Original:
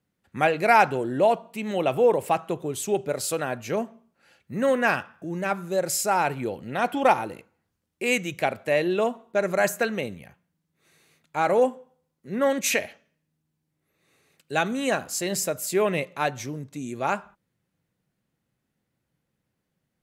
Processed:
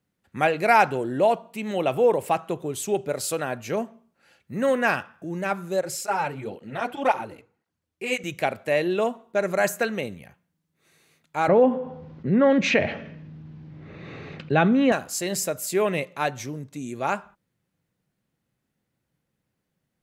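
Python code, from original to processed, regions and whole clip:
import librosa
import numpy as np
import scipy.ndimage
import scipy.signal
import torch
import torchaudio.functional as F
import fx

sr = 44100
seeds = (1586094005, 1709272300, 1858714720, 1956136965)

y = fx.chain(x, sr, fx.high_shelf(hz=9300.0, db=-7.5),
    fx.hum_notches(base_hz=60, count=9),
    fx.flanger_cancel(hz=1.9, depth_ms=6.0), at=(5.81, 8.24))
y = fx.chain(y, sr, fx.gaussian_blur(sigma=2.4),
    fx.peak_eq(hz=120.0, db=9.0, octaves=2.6),
    fx.env_flatten(amount_pct=50), at=(11.48, 14.92))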